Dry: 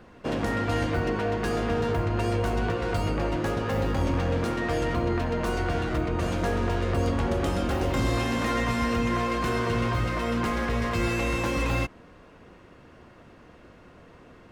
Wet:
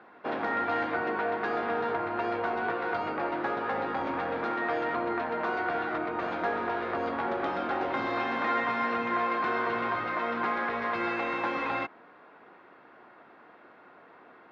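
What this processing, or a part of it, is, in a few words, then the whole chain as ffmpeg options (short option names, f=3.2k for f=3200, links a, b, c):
phone earpiece: -af "highpass=390,equalizer=f=520:t=q:w=4:g=-5,equalizer=f=810:t=q:w=4:g=5,equalizer=f=1.4k:t=q:w=4:g=4,equalizer=f=2.9k:t=q:w=4:g=-8,lowpass=f=3.4k:w=0.5412,lowpass=f=3.4k:w=1.3066"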